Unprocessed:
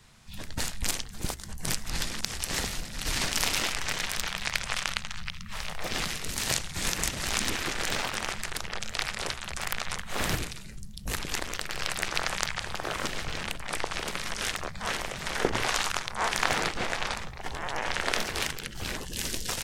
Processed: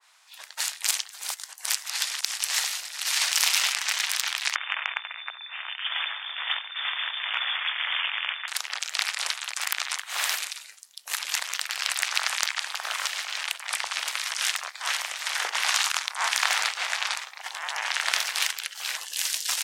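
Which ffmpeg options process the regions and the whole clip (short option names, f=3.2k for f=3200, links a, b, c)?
-filter_complex "[0:a]asettb=1/sr,asplit=3[a][b][c];[a]atrim=end=4.554[d];[b]atrim=start=4.55:end=8.48,asetpts=PTS-STARTPTS,afade=t=in:d=0.004:c=qsin,afade=t=out:st=3.926:d=0.004:c=qsin,highpass=f=120:w=0.5412,highpass=f=120:w=1.3066,lowpass=f=3.1k:t=q:w=0.5098,lowpass=f=3.1k:t=q:w=0.6013,lowpass=f=3.1k:t=q:w=0.9,lowpass=f=3.1k:t=q:w=2.563,afreqshift=-3700[e];[c]atrim=start=8.476[f];[d][e]acrossfade=d=0.004:c1=hsin:c2=qsin[g];[g][f]acrossfade=d=0.004:c1=qsin:c2=hsin,highpass=f=790:w=0.5412,highpass=f=790:w=1.3066,acontrast=57,adynamicequalizer=threshold=0.0126:dfrequency=1800:dqfactor=0.7:tfrequency=1800:tqfactor=0.7:attack=5:release=100:ratio=0.375:range=3:mode=boostabove:tftype=highshelf,volume=-5.5dB"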